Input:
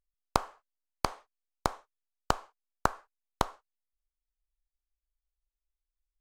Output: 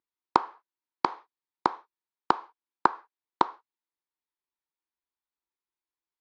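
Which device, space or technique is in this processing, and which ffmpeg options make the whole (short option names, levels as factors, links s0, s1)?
kitchen radio: -af "highpass=230,equalizer=f=340:t=q:w=4:g=8,equalizer=f=610:t=q:w=4:g=-8,equalizer=f=950:t=q:w=4:g=9,equalizer=f=2900:t=q:w=4:g=-5,lowpass=f=4300:w=0.5412,lowpass=f=4300:w=1.3066,volume=1.26"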